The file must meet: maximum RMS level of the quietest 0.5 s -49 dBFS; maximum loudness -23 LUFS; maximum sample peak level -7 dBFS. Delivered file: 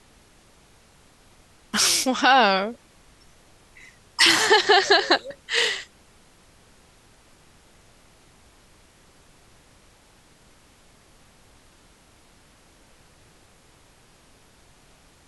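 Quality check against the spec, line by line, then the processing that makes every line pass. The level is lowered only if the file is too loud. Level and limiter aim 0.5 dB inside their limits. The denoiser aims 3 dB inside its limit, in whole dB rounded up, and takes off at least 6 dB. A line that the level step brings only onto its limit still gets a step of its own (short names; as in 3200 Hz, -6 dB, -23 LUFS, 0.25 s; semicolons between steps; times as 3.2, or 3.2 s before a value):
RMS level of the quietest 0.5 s -55 dBFS: OK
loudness -19.0 LUFS: fail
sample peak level -4.5 dBFS: fail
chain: gain -4.5 dB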